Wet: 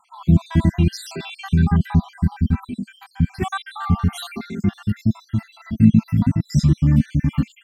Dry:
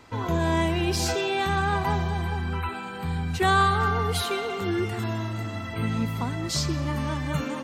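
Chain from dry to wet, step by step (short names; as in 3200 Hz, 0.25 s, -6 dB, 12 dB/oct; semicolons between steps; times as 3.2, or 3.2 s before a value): random spectral dropouts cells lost 63%; resonant low shelf 320 Hz +13 dB, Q 3; gain -1 dB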